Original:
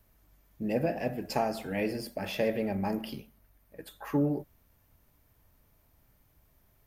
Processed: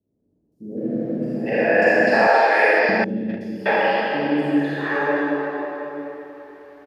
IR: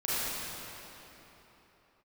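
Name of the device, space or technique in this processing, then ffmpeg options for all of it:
station announcement: -filter_complex "[0:a]highpass=310,lowpass=4.1k,equalizer=f=1.7k:t=o:w=0.39:g=12,aecho=1:1:87.46|198.3:0.282|0.316[a];[1:a]atrim=start_sample=2205[b];[a][b]afir=irnorm=-1:irlink=0,asettb=1/sr,asplit=3[c][d][e];[c]atrim=end=2.274[f];[d]atrim=start=2.27:end=2.89,asetpts=PTS-STARTPTS,afade=t=in:d=0.004:c=qsin,afade=t=out:st=0.616:d=0.004:c=qsin,agate=range=-30dB:threshold=-15dB:ratio=16:detection=peak[g];[e]atrim=start=2.886[h];[f][g]acrossfade=d=0.004:c1=hsin:c2=qsin[i];[i][h]acrossfade=d=0.004:c1=qsin:c2=hsin,acrossover=split=360|6000[j][k][l];[l]adelay=520[m];[k]adelay=770[n];[j][n][m]amix=inputs=3:normalize=0,volume=7dB"

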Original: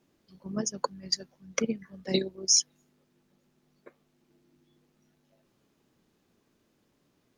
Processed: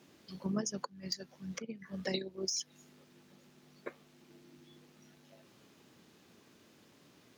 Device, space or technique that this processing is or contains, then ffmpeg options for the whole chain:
broadcast voice chain: -af "highpass=86,deesser=0.6,acompressor=threshold=-40dB:ratio=5,equalizer=f=3.3k:t=o:w=2.7:g=4.5,alimiter=level_in=6dB:limit=-24dB:level=0:latency=1:release=407,volume=-6dB,volume=7.5dB"

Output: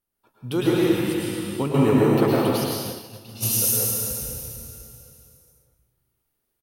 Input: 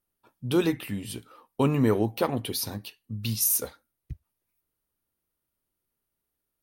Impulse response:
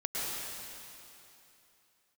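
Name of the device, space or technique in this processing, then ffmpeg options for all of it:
cave: -filter_complex "[0:a]aecho=1:1:251:0.2[a];[1:a]atrim=start_sample=2205[b];[a][b]afir=irnorm=-1:irlink=0,asplit=3[c][d][e];[c]afade=t=out:st=1.62:d=0.02[f];[d]agate=range=-33dB:threshold=-19dB:ratio=3:detection=peak,afade=t=in:st=1.62:d=0.02,afade=t=out:st=3.42:d=0.02[g];[e]afade=t=in:st=3.42:d=0.02[h];[f][g][h]amix=inputs=3:normalize=0"

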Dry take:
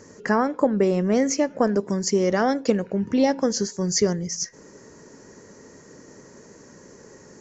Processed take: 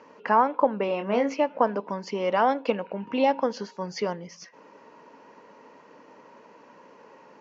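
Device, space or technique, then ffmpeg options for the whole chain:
phone earpiece: -filter_complex "[0:a]highpass=350,equalizer=f=380:t=q:w=4:g=-9,equalizer=f=950:t=q:w=4:g=9,equalizer=f=1.8k:t=q:w=4:g=-7,equalizer=f=2.7k:t=q:w=4:g=8,lowpass=f=3.5k:w=0.5412,lowpass=f=3.5k:w=1.3066,asettb=1/sr,asplit=3[a][b][c];[a]atrim=end=0.864[d];[b]atrim=start=0.86:end=1.34,asetpts=PTS-STARTPTS,afade=t=in:d=0.004:c=qsin,afade=t=out:st=0.476:d=0.004:c=qsin,asplit=2[e][f];[f]adelay=25,volume=-6.5dB[g];[e][g]amix=inputs=2:normalize=0,atrim=end_sample=21168[h];[c]atrim=start=1.336[i];[d][h]acrossfade=d=0.004:c1=hsin:c2=qsin[j];[j][i]acrossfade=d=0.004:c1=qsin:c2=hsin"

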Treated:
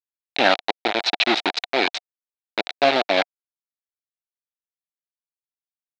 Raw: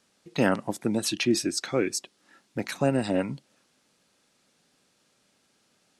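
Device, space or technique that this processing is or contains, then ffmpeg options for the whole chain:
hand-held game console: -filter_complex "[0:a]asettb=1/sr,asplit=3[a][b][c];[a]atrim=end=0.614[d];[b]atrim=start=0.61:end=1.08,asetpts=PTS-STARTPTS,afade=t=in:d=0.004:c=qsin,afade=t=out:st=0.466:d=0.004:c=qsin,aecho=1:1:2.3:0.52,atrim=end_sample=20727[e];[c]atrim=start=1.076[f];[d][e]acrossfade=d=0.004:c1=hsin:c2=qsin[g];[g][f]acrossfade=d=0.004:c1=qsin:c2=hsin,acrusher=bits=3:mix=0:aa=0.000001,highpass=460,equalizer=f=490:t=q:w=4:g=-6,equalizer=f=720:t=q:w=4:g=9,equalizer=f=1.1k:t=q:w=4:g=-5,equalizer=f=2.3k:t=q:w=4:g=4,equalizer=f=3.9k:t=q:w=4:g=9,lowpass=f=4.2k:w=0.5412,lowpass=f=4.2k:w=1.3066,volume=7dB"

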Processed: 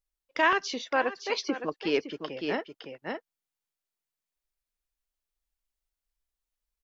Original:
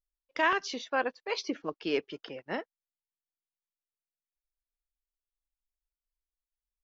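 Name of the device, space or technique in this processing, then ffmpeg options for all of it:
ducked delay: -filter_complex "[0:a]asplit=3[a][b][c];[b]adelay=561,volume=-3.5dB[d];[c]apad=whole_len=326247[e];[d][e]sidechaincompress=threshold=-41dB:ratio=4:attack=22:release=240[f];[a][f]amix=inputs=2:normalize=0,volume=3dB"

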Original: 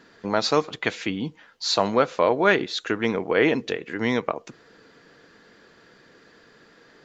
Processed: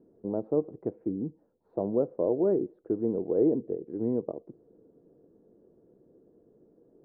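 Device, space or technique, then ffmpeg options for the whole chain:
under water: -af "lowpass=f=580:w=0.5412,lowpass=f=580:w=1.3066,equalizer=f=350:t=o:w=0.48:g=5.5,volume=-5.5dB"

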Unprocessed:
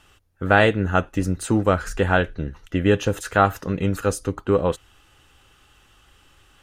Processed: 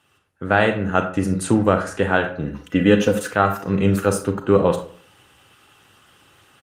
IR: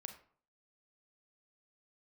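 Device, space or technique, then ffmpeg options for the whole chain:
far-field microphone of a smart speaker: -filter_complex "[0:a]asplit=3[a][b][c];[a]afade=t=out:st=2.44:d=0.02[d];[b]aecho=1:1:4:0.53,afade=t=in:st=2.44:d=0.02,afade=t=out:st=3.32:d=0.02[e];[c]afade=t=in:st=3.32:d=0.02[f];[d][e][f]amix=inputs=3:normalize=0[g];[1:a]atrim=start_sample=2205[h];[g][h]afir=irnorm=-1:irlink=0,highpass=f=98:w=0.5412,highpass=f=98:w=1.3066,dynaudnorm=f=140:g=3:m=10.5dB" -ar 48000 -c:a libopus -b:a 32k

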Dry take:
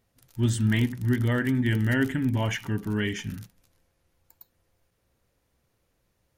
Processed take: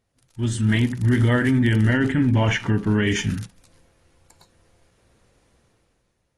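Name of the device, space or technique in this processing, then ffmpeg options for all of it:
low-bitrate web radio: -filter_complex "[0:a]asettb=1/sr,asplit=3[a][b][c];[a]atrim=end=1.884[d];[b]atrim=start=1.88:end=3.07,asetpts=PTS-STARTPTS,afade=t=in:d=0.004:c=qsin,afade=t=out:st=1.186:d=0.004:c=qsin,aemphasis=mode=reproduction:type=50kf[e];[c]atrim=start=3.066[f];[d][e]acrossfade=d=0.004:c1=hsin:c2=qsin[g];[g][f]acrossfade=d=0.004:c1=qsin:c2=hsin,dynaudnorm=f=140:g=11:m=13dB,alimiter=limit=-9.5dB:level=0:latency=1:release=16,volume=-2dB" -ar 24000 -c:a aac -b:a 32k

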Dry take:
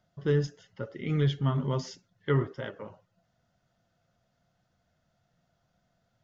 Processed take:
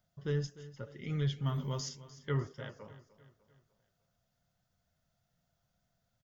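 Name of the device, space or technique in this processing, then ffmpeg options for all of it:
low shelf boost with a cut just above: -filter_complex "[0:a]aemphasis=mode=production:type=50kf,lowshelf=f=100:g=7.5,equalizer=f=320:t=o:w=0.72:g=-3.5,asettb=1/sr,asplit=3[a][b][c];[a]atrim=end=1.464[d];[b]atrim=start=1.46:end=1.89,asetpts=PTS-STARTPTS,afade=t=in:d=0.004:c=qsin,afade=t=out:st=0.426:d=0.004:c=qsin,aemphasis=mode=production:type=50kf[e];[c]atrim=start=1.886[f];[d][e]acrossfade=d=0.004:c1=hsin:c2=qsin[g];[g][f]acrossfade=d=0.004:c1=qsin:c2=hsin,aecho=1:1:300|600|900|1200:0.141|0.0678|0.0325|0.0156,volume=-8.5dB"

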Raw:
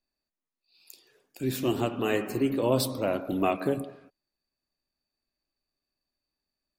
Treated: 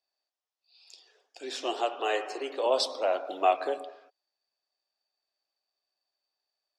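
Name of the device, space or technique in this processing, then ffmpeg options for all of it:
phone speaker on a table: -filter_complex "[0:a]asettb=1/sr,asplit=3[a][b][c];[a]atrim=end=1.744[d];[b]atrim=start=1.74:end=2.66,asetpts=PTS-STARTPTS,afade=t=in:d=0.004:c=qsin,afade=t=out:st=0.916:d=0.004:c=qsin,highpass=f=280:w=0.5412,highpass=f=280:w=1.3066[e];[c]atrim=start=2.656[f];[d][e]acrossfade=d=0.004:c1=hsin:c2=qsin[g];[g][f]acrossfade=d=0.004:c1=qsin:c2=hsin,highpass=f=450:w=0.5412,highpass=f=450:w=1.3066,equalizer=f=750:t=q:w=4:g=7,equalizer=f=2.3k:t=q:w=4:g=-3,equalizer=f=3.3k:t=q:w=4:g=5,equalizer=f=5.3k:t=q:w=4:g=6,lowpass=f=7.2k:w=0.5412,lowpass=f=7.2k:w=1.3066"

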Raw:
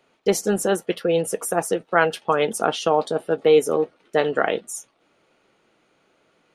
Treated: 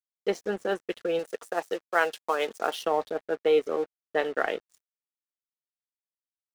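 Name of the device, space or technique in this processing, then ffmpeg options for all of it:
pocket radio on a weak battery: -filter_complex "[0:a]highpass=280,lowpass=4.2k,aeval=exprs='sgn(val(0))*max(abs(val(0))-0.0112,0)':c=same,equalizer=f=1.8k:t=o:w=0.3:g=4,asettb=1/sr,asplit=3[a][b][c];[a]atrim=end=1.194[d];[b]atrim=start=1.19:end=2.83,asetpts=PTS-STARTPTS,afade=t=in:d=0.004:c=qsin,afade=t=out:st=1.636:d=0.004:c=qsin,bass=f=250:g=-8,treble=f=4k:g=9[e];[c]atrim=start=2.826[f];[d][e]acrossfade=d=0.004:c1=hsin:c2=qsin[g];[g][f]acrossfade=d=0.004:c1=qsin:c2=hsin,volume=-6dB"

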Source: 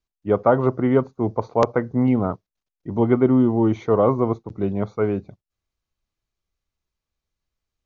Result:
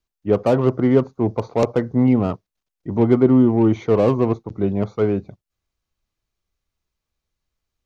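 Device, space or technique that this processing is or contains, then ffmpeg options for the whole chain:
one-band saturation: -filter_complex "[0:a]acrossover=split=590|3500[a][b][c];[b]asoftclip=type=tanh:threshold=-29dB[d];[a][d][c]amix=inputs=3:normalize=0,volume=3dB"

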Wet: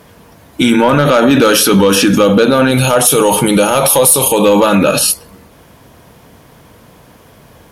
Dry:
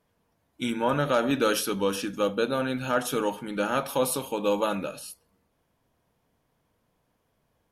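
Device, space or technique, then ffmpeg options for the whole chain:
mastering chain: -filter_complex "[0:a]asettb=1/sr,asplit=3[a][b][c];[a]atrim=end=2.714[d];[b]atrim=start=2.71:end=4.45,asetpts=PTS-STARTPTS,afade=t=in:d=0.004:c=qsin,afade=t=out:st=1.736:d=0.004:c=qsin,equalizer=f=250:t=o:w=0.67:g=-9,equalizer=f=1.6k:t=o:w=0.67:g=-10,equalizer=f=10k:t=o:w=0.67:g=12[e];[c]atrim=start=4.446[f];[d][e]acrossfade=d=0.004:c1=hsin:c2=qsin[g];[g][f]acrossfade=d=0.004:c1=qsin:c2=hsin,highpass=42,equalizer=f=760:t=o:w=0.77:g=-1.5,acompressor=threshold=-28dB:ratio=2,asoftclip=type=tanh:threshold=-18.5dB,asoftclip=type=hard:threshold=-22dB,alimiter=level_in=32dB:limit=-1dB:release=50:level=0:latency=1,volume=-1dB"

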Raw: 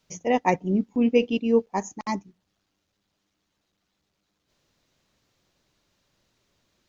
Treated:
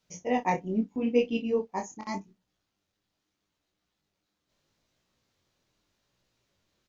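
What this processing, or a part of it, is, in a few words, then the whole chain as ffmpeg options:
double-tracked vocal: -filter_complex "[0:a]asplit=2[a][b];[b]adelay=32,volume=-11dB[c];[a][c]amix=inputs=2:normalize=0,flanger=delay=16.5:depth=7.2:speed=0.8,volume=-2.5dB"

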